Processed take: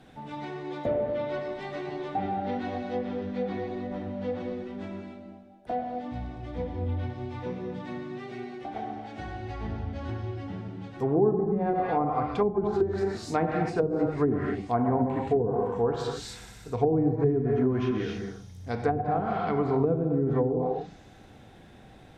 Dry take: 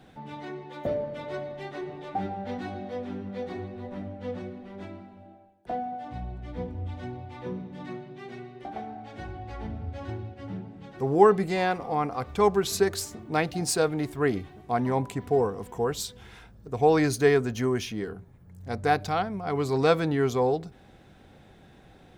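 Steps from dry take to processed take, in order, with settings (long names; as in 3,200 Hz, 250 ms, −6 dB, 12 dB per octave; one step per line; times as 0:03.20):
delay with a high-pass on its return 61 ms, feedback 84%, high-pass 4,700 Hz, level −15 dB
reverb whose tail is shaped and stops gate 310 ms flat, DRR 1.5 dB
treble cut that deepens with the level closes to 330 Hz, closed at −17.5 dBFS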